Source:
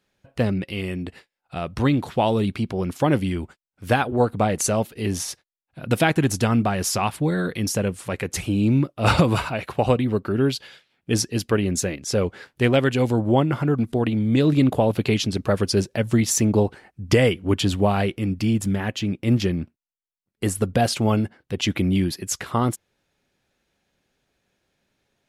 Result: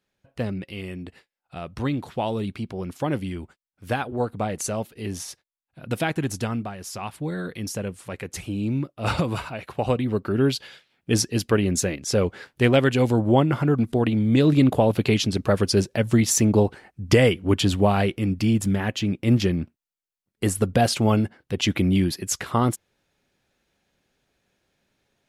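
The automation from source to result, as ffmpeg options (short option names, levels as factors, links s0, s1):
-af "volume=2.66,afade=t=out:st=6.42:d=0.36:silence=0.398107,afade=t=in:st=6.78:d=0.55:silence=0.421697,afade=t=in:st=9.62:d=0.9:silence=0.446684"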